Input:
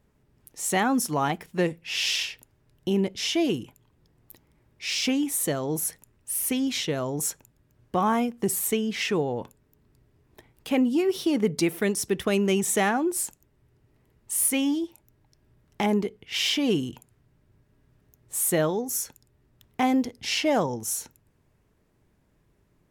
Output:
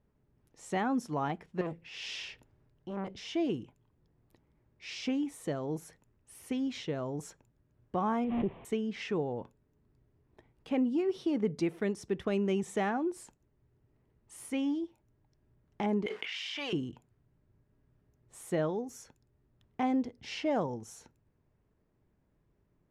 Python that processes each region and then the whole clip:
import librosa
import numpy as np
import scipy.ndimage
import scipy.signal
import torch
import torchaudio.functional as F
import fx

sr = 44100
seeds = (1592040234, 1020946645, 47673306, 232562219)

y = fx.chain(x, sr, fx.transient(attack_db=-7, sustain_db=5),
    fx.transformer_sat(knee_hz=1100.0), at=(1.61, 3.31))
y = fx.chain(y, sr, fx.delta_mod(bps=16000, step_db=-35.5),
    fx.peak_eq(hz=1500.0, db=-15.0, octaves=0.59),
    fx.pre_swell(db_per_s=23.0), at=(8.24, 8.65))
y = fx.chain(y, sr, fx.highpass(hz=1300.0, slope=12),
    fx.high_shelf(hz=4600.0, db=-4.5),
    fx.env_flatten(amount_pct=100), at=(16.06, 16.73))
y = scipy.signal.sosfilt(scipy.signal.butter(2, 6900.0, 'lowpass', fs=sr, output='sos'), y)
y = fx.high_shelf(y, sr, hz=2200.0, db=-10.5)
y = y * 10.0 ** (-6.5 / 20.0)